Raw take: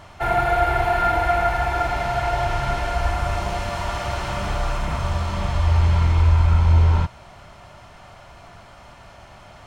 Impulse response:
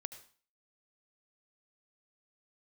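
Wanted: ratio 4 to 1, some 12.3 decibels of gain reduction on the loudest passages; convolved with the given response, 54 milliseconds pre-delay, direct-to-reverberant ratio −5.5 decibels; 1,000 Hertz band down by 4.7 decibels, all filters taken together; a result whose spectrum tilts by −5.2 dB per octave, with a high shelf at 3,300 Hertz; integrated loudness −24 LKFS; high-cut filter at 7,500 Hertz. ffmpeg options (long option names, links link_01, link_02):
-filter_complex "[0:a]lowpass=7500,equalizer=frequency=1000:width_type=o:gain=-7,highshelf=frequency=3300:gain=-7,acompressor=threshold=-27dB:ratio=4,asplit=2[link_01][link_02];[1:a]atrim=start_sample=2205,adelay=54[link_03];[link_02][link_03]afir=irnorm=-1:irlink=0,volume=8.5dB[link_04];[link_01][link_04]amix=inputs=2:normalize=0,volume=1dB"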